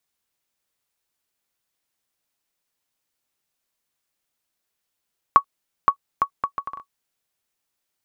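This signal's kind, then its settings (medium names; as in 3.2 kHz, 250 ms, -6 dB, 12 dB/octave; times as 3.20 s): bouncing ball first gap 0.52 s, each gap 0.65, 1.12 kHz, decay 83 ms -1.5 dBFS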